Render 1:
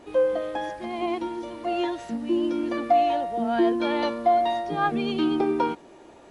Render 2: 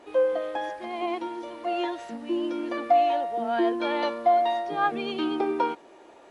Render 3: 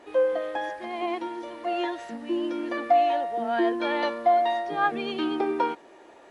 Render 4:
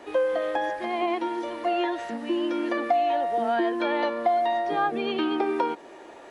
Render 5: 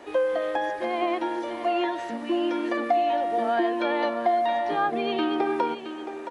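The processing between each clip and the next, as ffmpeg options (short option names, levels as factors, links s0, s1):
-af "bass=f=250:g=-14,treble=f=4000:g=-4"
-af "equalizer=f=1800:w=5:g=5"
-filter_complex "[0:a]acrossover=split=210|880|3700[s0][s1][s2][s3];[s0]acompressor=threshold=0.00224:ratio=4[s4];[s1]acompressor=threshold=0.0316:ratio=4[s5];[s2]acompressor=threshold=0.0141:ratio=4[s6];[s3]acompressor=threshold=0.00126:ratio=4[s7];[s4][s5][s6][s7]amix=inputs=4:normalize=0,volume=1.88"
-af "aecho=1:1:670:0.299"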